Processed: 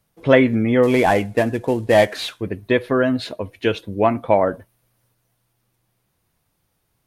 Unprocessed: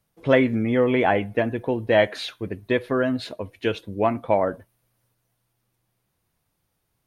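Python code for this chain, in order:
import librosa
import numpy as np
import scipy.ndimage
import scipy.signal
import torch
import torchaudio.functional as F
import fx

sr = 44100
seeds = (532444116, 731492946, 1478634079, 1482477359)

y = fx.cvsd(x, sr, bps=64000, at=(0.83, 2.41))
y = y * librosa.db_to_amplitude(4.5)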